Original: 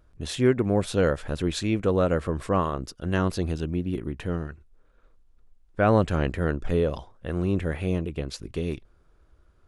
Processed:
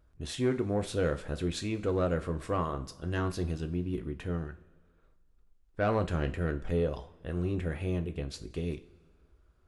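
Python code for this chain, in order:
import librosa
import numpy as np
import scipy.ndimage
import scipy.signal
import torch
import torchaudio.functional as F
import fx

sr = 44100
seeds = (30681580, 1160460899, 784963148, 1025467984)

y = 10.0 ** (-13.0 / 20.0) * np.tanh(x / 10.0 ** (-13.0 / 20.0))
y = fx.rev_double_slope(y, sr, seeds[0], early_s=0.29, late_s=1.6, knee_db=-18, drr_db=7.0)
y = F.gain(torch.from_numpy(y), -6.5).numpy()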